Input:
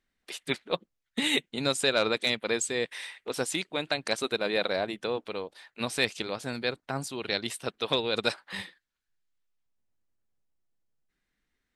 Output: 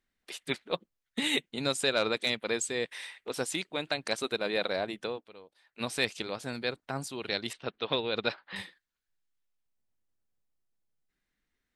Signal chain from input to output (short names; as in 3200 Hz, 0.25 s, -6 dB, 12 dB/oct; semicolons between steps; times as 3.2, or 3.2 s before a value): 5.05–5.83 dip -13.5 dB, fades 0.19 s; 7.53–8.56 LPF 4200 Hz 24 dB/oct; gain -2.5 dB